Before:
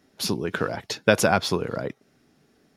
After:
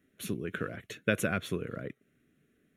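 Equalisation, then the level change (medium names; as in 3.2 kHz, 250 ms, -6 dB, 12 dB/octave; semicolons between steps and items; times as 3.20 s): static phaser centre 2.1 kHz, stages 4; -6.5 dB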